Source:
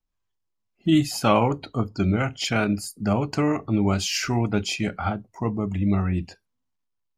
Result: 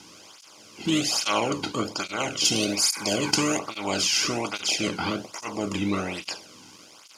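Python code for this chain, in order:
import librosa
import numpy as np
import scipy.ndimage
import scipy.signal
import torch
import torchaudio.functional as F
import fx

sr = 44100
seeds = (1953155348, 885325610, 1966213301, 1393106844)

y = fx.bin_compress(x, sr, power=0.4)
y = fx.high_shelf(y, sr, hz=4100.0, db=9.5, at=(2.45, 3.59))
y = fx.spec_repair(y, sr, seeds[0], start_s=2.43, length_s=0.85, low_hz=790.0, high_hz=2500.0, source='both')
y = fx.peak_eq(y, sr, hz=5400.0, db=11.5, octaves=2.2)
y = fx.flanger_cancel(y, sr, hz=1.2, depth_ms=1.8)
y = y * 10.0 ** (-7.0 / 20.0)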